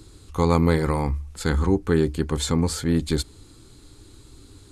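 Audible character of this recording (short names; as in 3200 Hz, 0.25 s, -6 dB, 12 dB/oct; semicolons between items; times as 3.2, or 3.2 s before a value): noise floor -50 dBFS; spectral tilt -6.5 dB/oct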